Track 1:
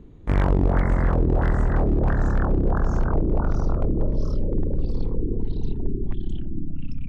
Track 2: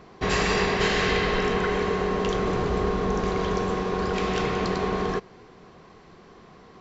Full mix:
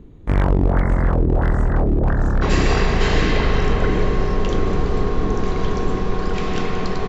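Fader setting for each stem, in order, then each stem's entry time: +3.0, +0.5 decibels; 0.00, 2.20 seconds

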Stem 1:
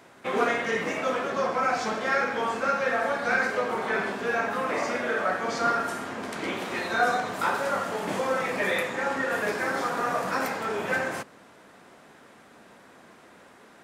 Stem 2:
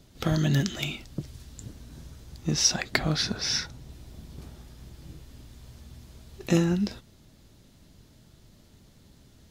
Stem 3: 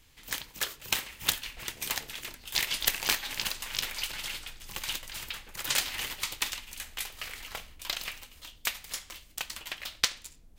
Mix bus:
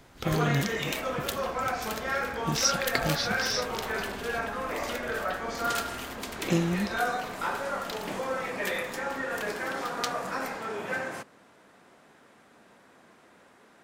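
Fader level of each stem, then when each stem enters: −5.0, −3.5, −7.5 decibels; 0.00, 0.00, 0.00 seconds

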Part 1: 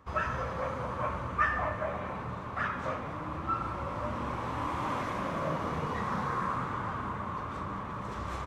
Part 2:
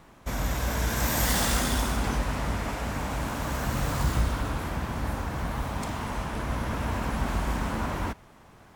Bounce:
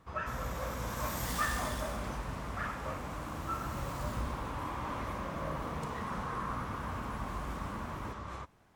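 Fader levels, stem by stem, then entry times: −6.0, −12.5 decibels; 0.00, 0.00 seconds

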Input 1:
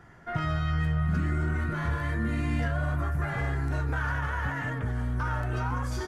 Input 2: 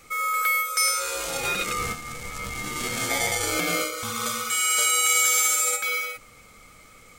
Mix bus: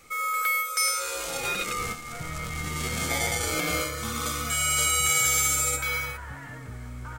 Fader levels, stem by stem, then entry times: −9.0, −2.5 decibels; 1.85, 0.00 seconds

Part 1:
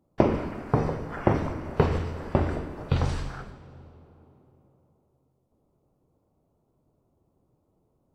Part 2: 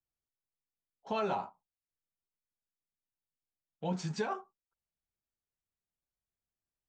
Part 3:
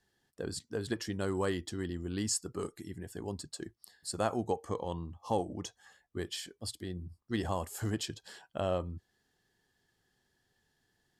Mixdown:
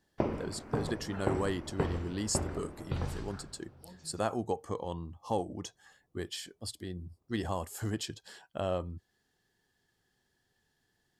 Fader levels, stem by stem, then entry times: −10.0, −19.0, −0.5 decibels; 0.00, 0.00, 0.00 seconds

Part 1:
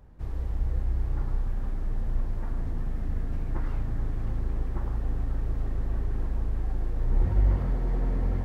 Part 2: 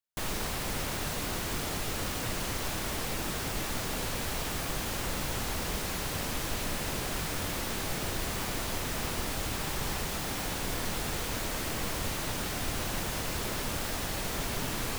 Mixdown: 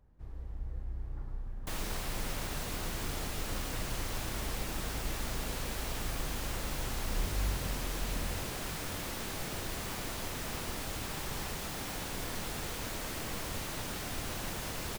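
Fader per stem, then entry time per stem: −12.0, −5.0 decibels; 0.00, 1.50 seconds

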